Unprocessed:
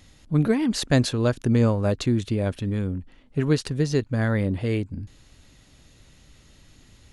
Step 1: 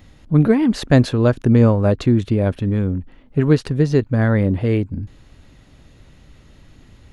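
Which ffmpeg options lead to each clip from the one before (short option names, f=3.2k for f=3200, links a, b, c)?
-af "equalizer=f=8.2k:t=o:w=2.5:g=-12,volume=7dB"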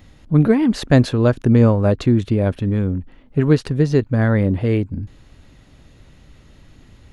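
-af anull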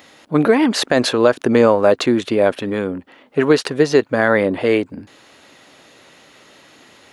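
-af "highpass=460,alimiter=level_in=11dB:limit=-1dB:release=50:level=0:latency=1,volume=-1dB"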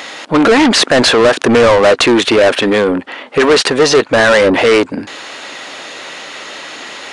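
-filter_complex "[0:a]asplit=2[a][b];[b]highpass=f=720:p=1,volume=27dB,asoftclip=type=tanh:threshold=-1.5dB[c];[a][c]amix=inputs=2:normalize=0,lowpass=f=6.3k:p=1,volume=-6dB,aresample=22050,aresample=44100"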